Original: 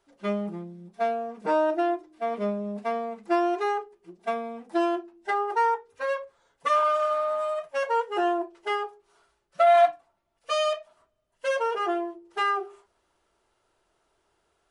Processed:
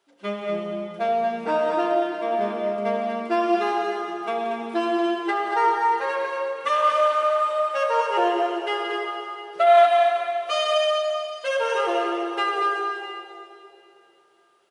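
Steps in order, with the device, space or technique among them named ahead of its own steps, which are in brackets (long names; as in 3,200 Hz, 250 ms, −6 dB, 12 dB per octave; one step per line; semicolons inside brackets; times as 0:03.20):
stadium PA (high-pass filter 200 Hz 12 dB per octave; parametric band 3,100 Hz +5 dB 0.97 octaves; loudspeakers that aren't time-aligned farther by 61 metres −10 dB, 80 metres −6 dB; convolution reverb RT60 2.8 s, pre-delay 59 ms, DRR 1 dB)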